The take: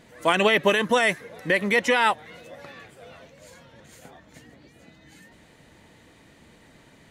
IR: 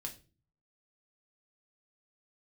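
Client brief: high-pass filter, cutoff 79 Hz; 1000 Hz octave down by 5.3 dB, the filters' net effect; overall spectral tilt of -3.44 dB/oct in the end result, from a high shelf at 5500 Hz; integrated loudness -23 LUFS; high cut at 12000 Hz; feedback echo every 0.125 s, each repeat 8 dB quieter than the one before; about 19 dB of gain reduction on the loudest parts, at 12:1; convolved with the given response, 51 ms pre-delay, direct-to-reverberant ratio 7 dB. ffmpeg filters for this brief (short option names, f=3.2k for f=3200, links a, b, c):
-filter_complex "[0:a]highpass=79,lowpass=12k,equalizer=f=1k:t=o:g=-6.5,highshelf=f=5.5k:g=-8.5,acompressor=threshold=-37dB:ratio=12,aecho=1:1:125|250|375|500|625:0.398|0.159|0.0637|0.0255|0.0102,asplit=2[a][b];[1:a]atrim=start_sample=2205,adelay=51[c];[b][c]afir=irnorm=-1:irlink=0,volume=-4.5dB[d];[a][d]amix=inputs=2:normalize=0,volume=20.5dB"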